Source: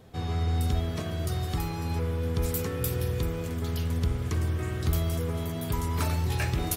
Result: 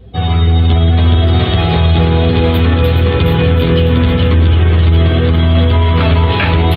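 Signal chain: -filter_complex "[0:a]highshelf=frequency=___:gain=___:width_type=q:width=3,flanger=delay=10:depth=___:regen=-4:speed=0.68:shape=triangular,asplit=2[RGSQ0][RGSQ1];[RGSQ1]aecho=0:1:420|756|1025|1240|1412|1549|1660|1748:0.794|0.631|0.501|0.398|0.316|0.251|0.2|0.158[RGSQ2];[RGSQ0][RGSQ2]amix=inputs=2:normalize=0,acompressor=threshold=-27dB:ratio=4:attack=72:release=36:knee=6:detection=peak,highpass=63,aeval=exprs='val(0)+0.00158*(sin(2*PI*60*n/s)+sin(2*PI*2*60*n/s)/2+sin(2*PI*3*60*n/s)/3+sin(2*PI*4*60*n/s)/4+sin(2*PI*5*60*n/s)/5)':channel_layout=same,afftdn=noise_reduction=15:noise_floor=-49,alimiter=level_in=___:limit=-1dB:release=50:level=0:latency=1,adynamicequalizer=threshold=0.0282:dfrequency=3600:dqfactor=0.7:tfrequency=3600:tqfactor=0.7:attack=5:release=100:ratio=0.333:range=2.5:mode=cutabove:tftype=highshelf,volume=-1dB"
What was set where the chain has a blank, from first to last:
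4700, -12, 2.4, 20.5dB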